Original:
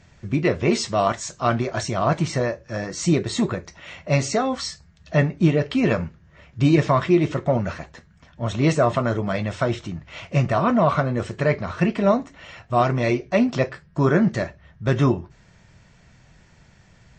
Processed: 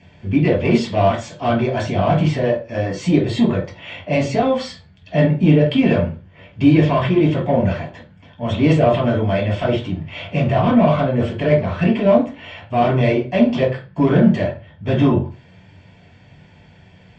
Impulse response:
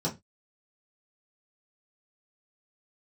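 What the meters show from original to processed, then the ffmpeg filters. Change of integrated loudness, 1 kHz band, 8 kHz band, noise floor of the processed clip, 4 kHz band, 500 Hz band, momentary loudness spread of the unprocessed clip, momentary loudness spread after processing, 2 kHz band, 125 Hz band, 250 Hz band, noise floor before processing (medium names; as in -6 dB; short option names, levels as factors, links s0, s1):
+4.5 dB, +2.5 dB, no reading, -48 dBFS, +2.5 dB, +4.5 dB, 11 LU, 11 LU, +1.5 dB, +4.5 dB, +5.5 dB, -54 dBFS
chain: -filter_complex "[0:a]acontrast=26,asplit=2[s0][s1];[s1]highpass=f=720:p=1,volume=5.62,asoftclip=type=tanh:threshold=0.668[s2];[s0][s2]amix=inputs=2:normalize=0,lowpass=f=3000:p=1,volume=0.501[s3];[1:a]atrim=start_sample=2205,asetrate=26019,aresample=44100[s4];[s3][s4]afir=irnorm=-1:irlink=0,volume=0.158"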